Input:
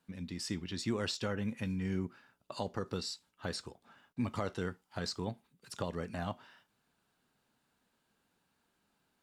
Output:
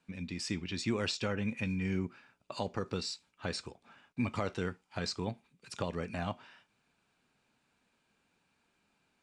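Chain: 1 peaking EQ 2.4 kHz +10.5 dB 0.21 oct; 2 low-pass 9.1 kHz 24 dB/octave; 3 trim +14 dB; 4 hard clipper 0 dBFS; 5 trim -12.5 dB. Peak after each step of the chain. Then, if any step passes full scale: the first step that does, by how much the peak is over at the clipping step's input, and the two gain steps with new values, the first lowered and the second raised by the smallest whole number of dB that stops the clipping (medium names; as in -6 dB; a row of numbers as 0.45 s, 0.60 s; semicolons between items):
-20.0 dBFS, -20.0 dBFS, -6.0 dBFS, -6.0 dBFS, -18.5 dBFS; nothing clips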